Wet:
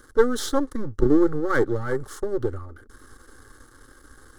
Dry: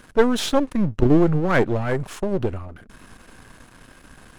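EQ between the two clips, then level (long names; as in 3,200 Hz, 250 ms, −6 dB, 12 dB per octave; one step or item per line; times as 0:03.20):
Butterworth band-reject 980 Hz, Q 6
phaser with its sweep stopped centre 680 Hz, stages 6
0.0 dB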